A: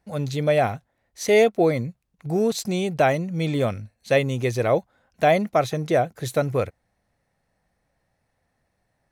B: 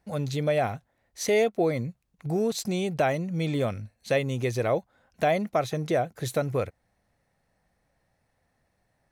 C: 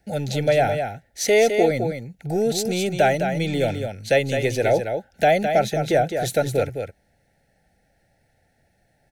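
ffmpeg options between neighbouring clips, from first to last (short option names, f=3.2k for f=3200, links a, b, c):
-af "acompressor=threshold=-30dB:ratio=1.5"
-filter_complex "[0:a]acrossover=split=350|1000[a][b][c];[a]asoftclip=type=tanh:threshold=-33dB[d];[d][b][c]amix=inputs=3:normalize=0,asuperstop=centerf=1100:order=20:qfactor=2.4,aecho=1:1:210:0.447,volume=7dB"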